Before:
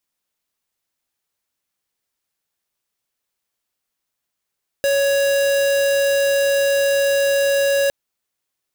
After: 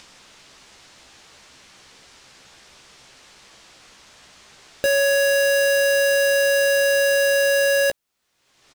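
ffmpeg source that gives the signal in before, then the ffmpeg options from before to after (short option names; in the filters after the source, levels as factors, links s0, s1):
-f lavfi -i "aevalsrc='0.141*(2*lt(mod(557*t,1),0.5)-1)':d=3.06:s=44100"
-filter_complex "[0:a]acrossover=split=7300[s0][s1];[s0]acompressor=mode=upward:threshold=0.0708:ratio=2.5[s2];[s2][s1]amix=inputs=2:normalize=0,asoftclip=type=hard:threshold=0.188,asplit=2[s3][s4];[s4]adelay=15,volume=0.422[s5];[s3][s5]amix=inputs=2:normalize=0"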